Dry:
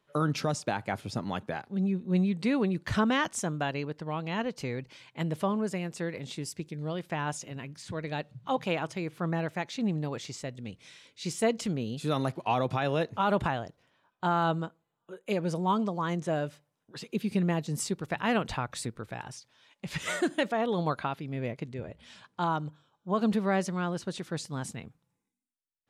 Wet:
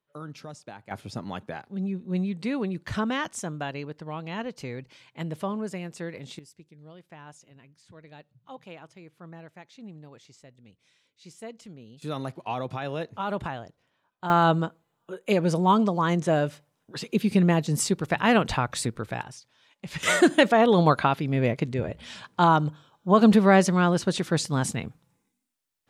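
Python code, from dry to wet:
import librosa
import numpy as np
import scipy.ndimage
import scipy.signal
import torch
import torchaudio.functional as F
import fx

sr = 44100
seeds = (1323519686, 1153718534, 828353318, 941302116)

y = fx.gain(x, sr, db=fx.steps((0.0, -12.0), (0.91, -1.5), (6.39, -14.0), (12.02, -3.5), (14.3, 7.0), (19.23, 0.0), (20.03, 10.0)))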